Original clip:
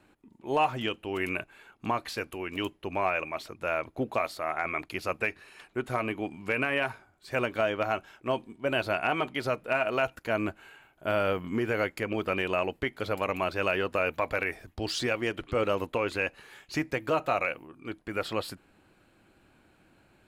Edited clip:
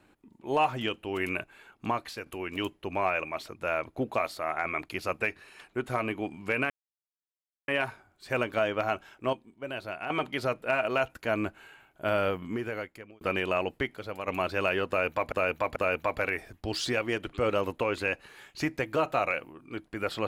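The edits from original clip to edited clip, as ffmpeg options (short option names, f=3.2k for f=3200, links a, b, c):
-filter_complex "[0:a]asplit=10[a][b][c][d][e][f][g][h][i][j];[a]atrim=end=2.26,asetpts=PTS-STARTPTS,afade=t=out:st=1.89:d=0.37:silence=0.421697[k];[b]atrim=start=2.26:end=6.7,asetpts=PTS-STARTPTS,afade=t=in:d=0.004:c=hsin:silence=0.421697,afade=t=out:st=4.436:d=0.004:c=hsin,apad=pad_dur=0.98[l];[c]atrim=start=6.7:end=8.352,asetpts=PTS-STARTPTS,afade=t=in:d=0.004:c=hsin[m];[d]atrim=start=8.348:end=9.122,asetpts=PTS-STARTPTS,volume=-8.5dB[n];[e]atrim=start=9.118:end=12.23,asetpts=PTS-STARTPTS,afade=t=out:st=2.112:d=1[o];[f]atrim=start=12.23:end=12.982,asetpts=PTS-STARTPTS,afade=t=in:d=0.004:c=hsin[p];[g]atrim=start=12.978:end=13.302,asetpts=PTS-STARTPTS,volume=-7dB[q];[h]atrim=start=13.298:end=14.342[r];[i]atrim=start=13.898:end=14.342[s];[j]atrim=start=13.898[t];[k][l][m]concat=n=3:v=0:a=1[u];[u][n]acrossfade=d=0.004:c1=hsin:c2=hsin[v];[o][p]concat=n=2:v=0:a=1[w];[v][w]acrossfade=d=0.004:c1=hsin:c2=hsin[x];[x][q]acrossfade=d=0.004:c1=hsin:c2=hsin[y];[y][r]acrossfade=d=0.004:c1=hsin:c2=hsin[z];[z][s]acrossfade=d=0.004:c1=hsin:c2=hsin[aa];[aa][t]acrossfade=d=0.004:c1=hsin:c2=hsin"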